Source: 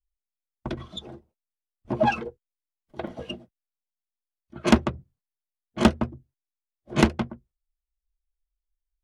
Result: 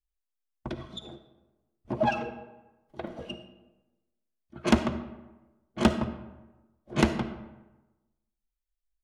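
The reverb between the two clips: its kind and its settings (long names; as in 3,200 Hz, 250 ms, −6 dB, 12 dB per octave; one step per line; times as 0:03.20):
comb and all-pass reverb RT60 1.1 s, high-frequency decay 0.6×, pre-delay 15 ms, DRR 9 dB
level −4 dB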